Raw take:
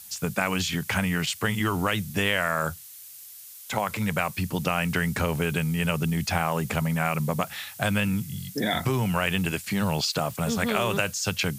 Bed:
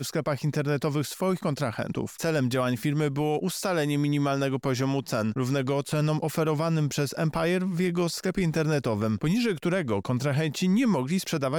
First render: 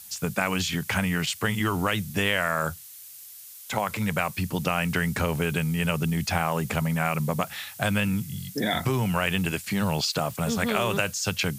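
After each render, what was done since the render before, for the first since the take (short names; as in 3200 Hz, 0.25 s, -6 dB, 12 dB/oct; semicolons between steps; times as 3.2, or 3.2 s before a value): nothing audible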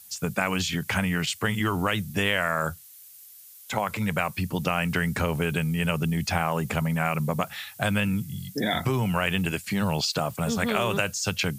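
denoiser 6 dB, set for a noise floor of -45 dBFS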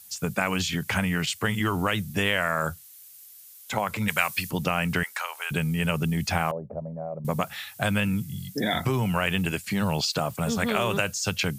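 4.08–4.51 tilt shelf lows -9 dB; 5.03–5.51 HPF 840 Hz 24 dB/oct; 6.51–7.25 ladder low-pass 650 Hz, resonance 70%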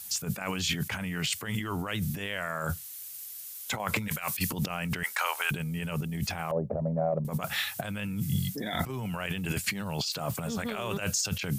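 transient shaper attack +5 dB, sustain 0 dB; negative-ratio compressor -32 dBFS, ratio -1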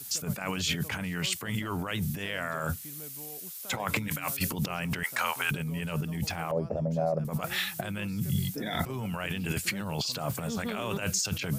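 add bed -22 dB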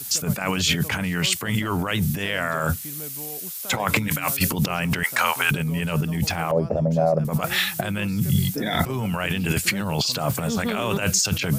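gain +8.5 dB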